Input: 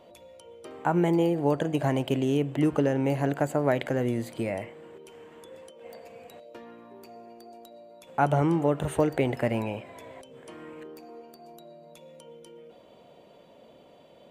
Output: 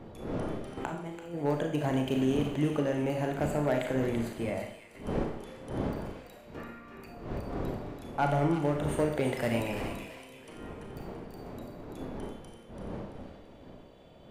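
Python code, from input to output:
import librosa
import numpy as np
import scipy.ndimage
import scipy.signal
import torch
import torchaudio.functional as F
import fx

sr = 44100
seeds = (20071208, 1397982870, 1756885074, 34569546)

y = fx.dmg_wind(x, sr, seeds[0], corner_hz=410.0, level_db=-37.0)
y = fx.spec_box(y, sr, start_s=6.58, length_s=0.49, low_hz=1100.0, high_hz=2900.0, gain_db=9)
y = fx.high_shelf(y, sr, hz=2700.0, db=10.5, at=(9.27, 9.88))
y = np.clip(10.0 ** (15.0 / 20.0) * y, -1.0, 1.0) / 10.0 ** (15.0 / 20.0)
y = fx.over_compress(y, sr, threshold_db=-31.0, ratio=-0.5, at=(0.77, 1.35))
y = fx.echo_wet_highpass(y, sr, ms=336, feedback_pct=36, hz=1900.0, wet_db=-6.0)
y = fx.rev_schroeder(y, sr, rt60_s=0.63, comb_ms=27, drr_db=3.0)
y = fx.band_widen(y, sr, depth_pct=40, at=(4.33, 4.95))
y = y * 10.0 ** (-5.0 / 20.0)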